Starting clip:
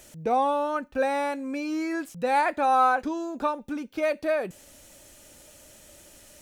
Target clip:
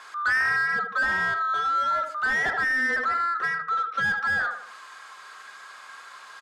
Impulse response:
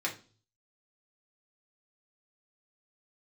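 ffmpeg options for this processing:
-filter_complex "[0:a]afftfilt=real='real(if(lt(b,960),b+48*(1-2*mod(floor(b/48),2)),b),0)':imag='imag(if(lt(b,960),b+48*(1-2*mod(floor(b/48),2)),b),0)':win_size=2048:overlap=0.75,highpass=f=1100:p=1,asplit=2[s0][s1];[s1]adelay=78,lowpass=f=1500:p=1,volume=0.376,asplit=2[s2][s3];[s3]adelay=78,lowpass=f=1500:p=1,volume=0.46,asplit=2[s4][s5];[s5]adelay=78,lowpass=f=1500:p=1,volume=0.46,asplit=2[s6][s7];[s7]adelay=78,lowpass=f=1500:p=1,volume=0.46,asplit=2[s8][s9];[s9]adelay=78,lowpass=f=1500:p=1,volume=0.46[s10];[s2][s4][s6][s8][s10]amix=inputs=5:normalize=0[s11];[s0][s11]amix=inputs=2:normalize=0,asplit=2[s12][s13];[s13]highpass=f=720:p=1,volume=11.2,asoftclip=type=tanh:threshold=0.211[s14];[s12][s14]amix=inputs=2:normalize=0,lowpass=f=1400:p=1,volume=0.501,adynamicsmooth=sensitivity=3.5:basefreq=6500,adynamicequalizer=threshold=0.0158:dfrequency=1700:dqfactor=0.7:tfrequency=1700:tqfactor=0.7:attack=5:release=100:ratio=0.375:range=3:mode=cutabove:tftype=highshelf,volume=1.19"

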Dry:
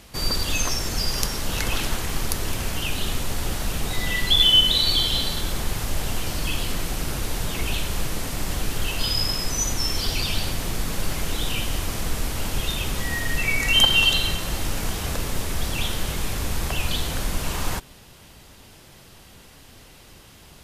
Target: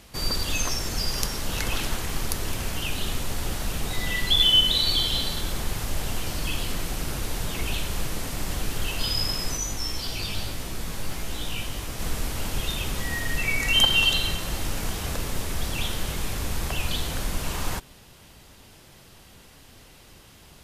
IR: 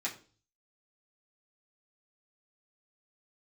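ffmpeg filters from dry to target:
-filter_complex "[0:a]asplit=3[s0][s1][s2];[s0]afade=t=out:st=9.56:d=0.02[s3];[s1]flanger=delay=15.5:depth=4.2:speed=1.5,afade=t=in:st=9.56:d=0.02,afade=t=out:st=11.99:d=0.02[s4];[s2]afade=t=in:st=11.99:d=0.02[s5];[s3][s4][s5]amix=inputs=3:normalize=0,volume=0.75"

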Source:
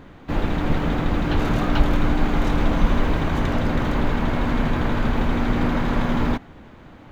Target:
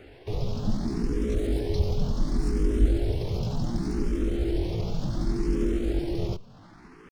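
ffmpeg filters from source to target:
-filter_complex "[0:a]acrossover=split=390|2900[s0][s1][s2];[s1]acompressor=threshold=0.00562:ratio=10[s3];[s0][s3][s2]amix=inputs=3:normalize=0,asetrate=62367,aresample=44100,atempo=0.707107,asplit=2[s4][s5];[s5]afreqshift=0.68[s6];[s4][s6]amix=inputs=2:normalize=1,volume=0.794"

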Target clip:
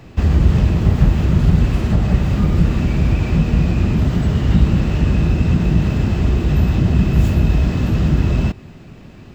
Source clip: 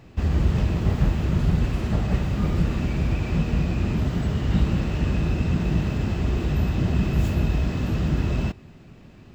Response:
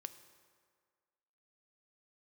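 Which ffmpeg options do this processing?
-filter_complex "[0:a]acrossover=split=280[s0][s1];[s1]acompressor=threshold=0.02:ratio=6[s2];[s0][s2]amix=inputs=2:normalize=0,volume=2.51"

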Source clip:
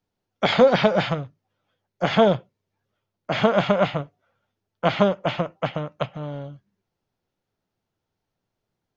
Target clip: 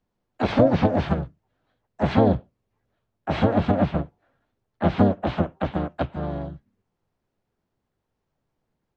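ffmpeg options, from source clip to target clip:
-filter_complex "[0:a]highshelf=f=2700:g=-9,acrossover=split=450[s0][s1];[s1]acompressor=threshold=0.0355:ratio=8[s2];[s0][s2]amix=inputs=2:normalize=0,asplit=4[s3][s4][s5][s6];[s4]asetrate=22050,aresample=44100,atempo=2,volume=0.794[s7];[s5]asetrate=52444,aresample=44100,atempo=0.840896,volume=0.794[s8];[s6]asetrate=58866,aresample=44100,atempo=0.749154,volume=0.316[s9];[s3][s7][s8][s9]amix=inputs=4:normalize=0"

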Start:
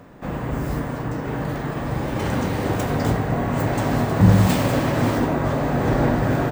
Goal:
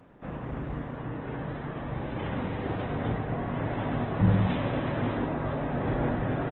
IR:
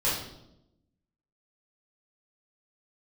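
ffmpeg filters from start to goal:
-af "aresample=8000,aresample=44100,volume=0.355" -ar 48000 -c:a libopus -b:a 16k

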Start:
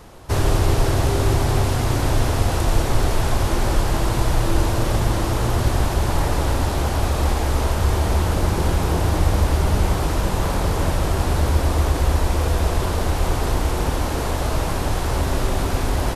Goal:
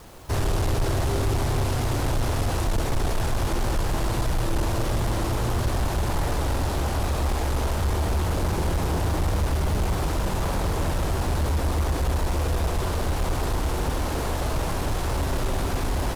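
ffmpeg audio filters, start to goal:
-af "asoftclip=type=tanh:threshold=0.178,acrusher=bits=7:mix=0:aa=0.000001,volume=0.75"

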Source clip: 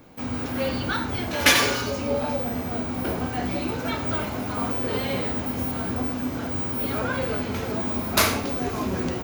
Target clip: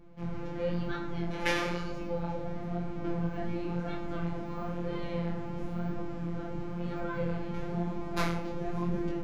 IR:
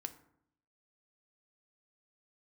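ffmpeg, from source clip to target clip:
-filter_complex "[0:a]afftfilt=real='hypot(re,im)*cos(PI*b)':imag='0':win_size=1024:overlap=0.75,flanger=delay=20:depth=6.9:speed=0.99,acrossover=split=830[s0][s1];[s0]volume=16.8,asoftclip=hard,volume=0.0596[s2];[s2][s1]amix=inputs=2:normalize=0,aemphasis=mode=reproduction:type=riaa,volume=0.631"

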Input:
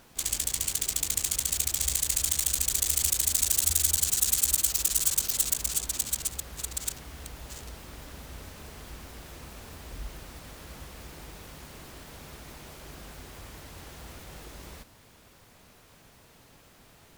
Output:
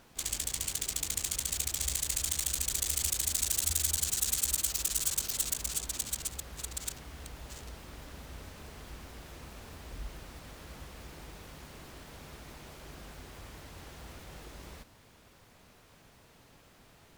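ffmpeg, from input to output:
-af "highshelf=f=7400:g=-5,volume=0.75"

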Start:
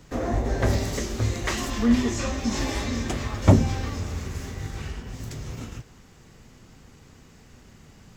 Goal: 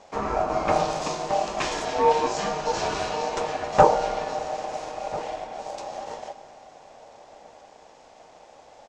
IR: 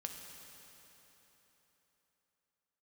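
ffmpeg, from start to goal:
-filter_complex "[0:a]aeval=exprs='val(0)*sin(2*PI*750*n/s)':c=same,lowpass=f=9100:w=0.5412,lowpass=f=9100:w=1.3066,asplit=2[s0][s1];[1:a]atrim=start_sample=2205[s2];[s1][s2]afir=irnorm=-1:irlink=0,volume=0.473[s3];[s0][s3]amix=inputs=2:normalize=0,asetrate=40517,aresample=44100,asplit=2[s4][s5];[s5]adelay=1341,volume=0.158,highshelf=f=4000:g=-30.2[s6];[s4][s6]amix=inputs=2:normalize=0"

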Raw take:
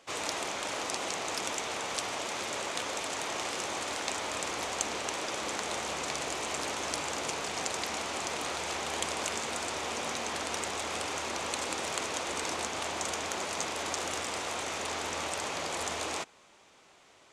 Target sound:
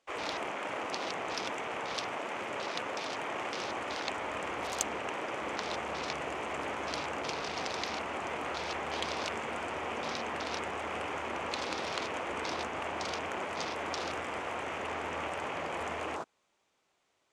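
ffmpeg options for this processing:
-af "afwtdn=0.0112"

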